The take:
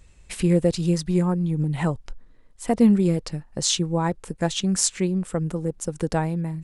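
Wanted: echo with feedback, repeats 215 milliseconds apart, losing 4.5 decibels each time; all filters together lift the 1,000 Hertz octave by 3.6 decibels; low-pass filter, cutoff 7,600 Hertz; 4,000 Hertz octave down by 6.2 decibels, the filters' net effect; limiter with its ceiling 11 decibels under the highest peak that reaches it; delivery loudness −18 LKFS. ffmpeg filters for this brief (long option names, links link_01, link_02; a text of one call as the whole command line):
ffmpeg -i in.wav -af "lowpass=7600,equalizer=frequency=1000:width_type=o:gain=5,equalizer=frequency=4000:width_type=o:gain=-8,alimiter=limit=-18dB:level=0:latency=1,aecho=1:1:215|430|645|860|1075|1290|1505|1720|1935:0.596|0.357|0.214|0.129|0.0772|0.0463|0.0278|0.0167|0.01,volume=8dB" out.wav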